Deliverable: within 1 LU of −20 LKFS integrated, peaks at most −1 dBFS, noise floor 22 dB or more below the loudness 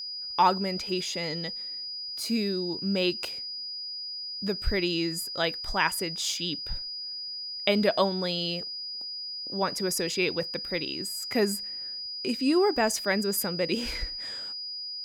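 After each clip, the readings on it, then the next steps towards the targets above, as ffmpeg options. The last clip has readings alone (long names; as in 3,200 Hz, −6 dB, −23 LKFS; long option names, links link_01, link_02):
interfering tone 4,900 Hz; level of the tone −34 dBFS; integrated loudness −28.5 LKFS; sample peak −8.0 dBFS; target loudness −20.0 LKFS
→ -af "bandreject=frequency=4900:width=30"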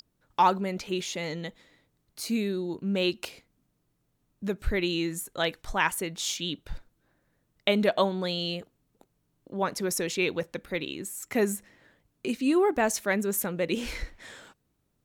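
interfering tone none found; integrated loudness −29.0 LKFS; sample peak −7.5 dBFS; target loudness −20.0 LKFS
→ -af "volume=9dB,alimiter=limit=-1dB:level=0:latency=1"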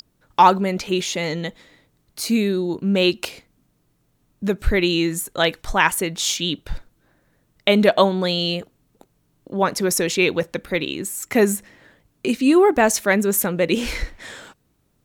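integrated loudness −20.0 LKFS; sample peak −1.0 dBFS; background noise floor −66 dBFS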